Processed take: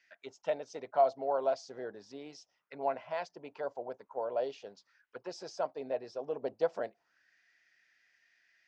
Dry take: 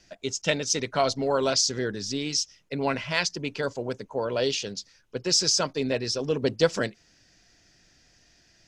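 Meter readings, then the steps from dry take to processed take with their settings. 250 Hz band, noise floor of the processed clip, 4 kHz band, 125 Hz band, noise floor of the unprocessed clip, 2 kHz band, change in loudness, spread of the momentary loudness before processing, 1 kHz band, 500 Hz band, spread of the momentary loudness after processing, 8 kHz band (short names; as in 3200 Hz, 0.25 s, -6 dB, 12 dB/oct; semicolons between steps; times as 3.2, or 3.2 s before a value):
-17.5 dB, -79 dBFS, -26.5 dB, -24.5 dB, -62 dBFS, -17.0 dB, -9.5 dB, 10 LU, -3.5 dB, -6.5 dB, 19 LU, -30.0 dB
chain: auto-wah 710–2000 Hz, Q 3.4, down, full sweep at -27 dBFS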